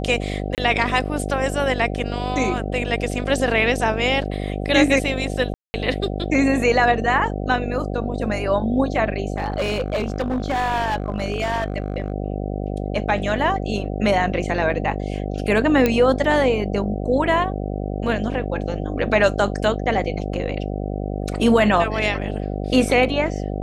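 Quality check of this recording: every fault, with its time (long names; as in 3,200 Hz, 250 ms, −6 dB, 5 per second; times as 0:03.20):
mains buzz 50 Hz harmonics 15 −26 dBFS
0:00.55–0:00.58: drop-out 28 ms
0:05.54–0:05.74: drop-out 200 ms
0:09.36–0:12.12: clipping −18 dBFS
0:15.86: click −5 dBFS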